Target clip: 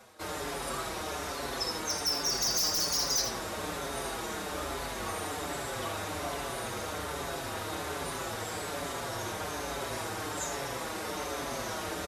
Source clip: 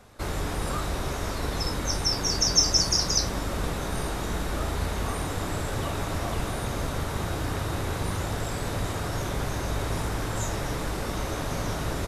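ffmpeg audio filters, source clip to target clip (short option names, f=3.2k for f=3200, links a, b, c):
-filter_complex "[0:a]highpass=59,bass=f=250:g=-12,treble=f=4k:g=1,areverse,acompressor=mode=upward:threshold=-36dB:ratio=2.5,areverse,aeval=exprs='0.0944*(abs(mod(val(0)/0.0944+3,4)-2)-1)':c=same,aecho=1:1:80:0.398,asplit=2[a][b];[b]adelay=5.7,afreqshift=-1.2[c];[a][c]amix=inputs=2:normalize=1"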